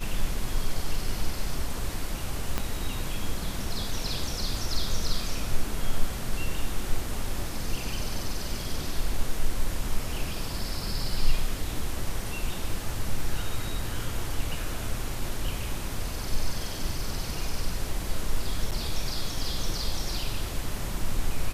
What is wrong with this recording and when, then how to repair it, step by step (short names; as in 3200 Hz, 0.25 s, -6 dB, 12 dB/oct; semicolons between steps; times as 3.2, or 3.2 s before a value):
2.58 pop -12 dBFS
18.71–18.72 gap 7.2 ms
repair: de-click; interpolate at 18.71, 7.2 ms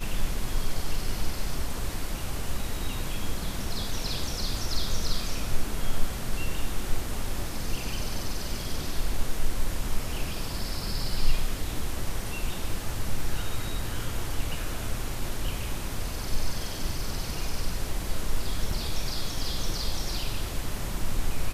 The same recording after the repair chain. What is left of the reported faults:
2.58 pop